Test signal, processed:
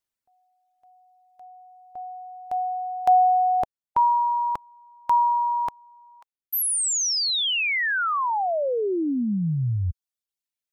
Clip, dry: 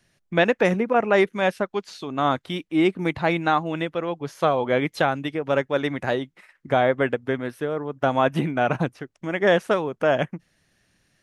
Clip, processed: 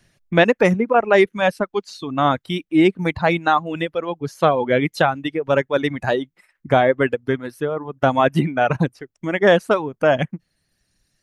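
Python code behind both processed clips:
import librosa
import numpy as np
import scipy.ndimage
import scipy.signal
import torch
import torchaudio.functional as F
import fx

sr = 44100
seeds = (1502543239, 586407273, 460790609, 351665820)

y = fx.low_shelf(x, sr, hz=170.0, db=5.0)
y = fx.dereverb_blind(y, sr, rt60_s=1.9)
y = F.gain(torch.from_numpy(y), 4.5).numpy()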